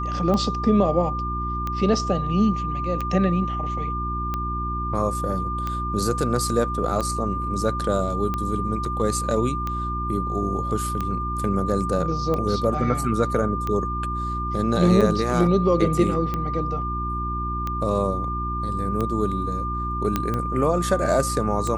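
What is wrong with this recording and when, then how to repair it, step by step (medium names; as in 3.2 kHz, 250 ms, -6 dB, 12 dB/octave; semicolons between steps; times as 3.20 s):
hum 60 Hz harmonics 6 -29 dBFS
tick 45 rpm -14 dBFS
whine 1.2 kHz -27 dBFS
8.85 s: dropout 2.1 ms
20.16 s: pop -8 dBFS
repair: de-click; de-hum 60 Hz, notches 6; band-stop 1.2 kHz, Q 30; interpolate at 8.85 s, 2.1 ms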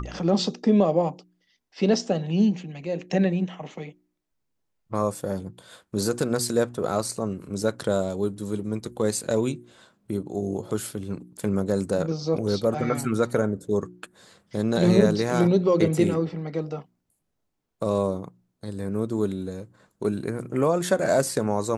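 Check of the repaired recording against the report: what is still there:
nothing left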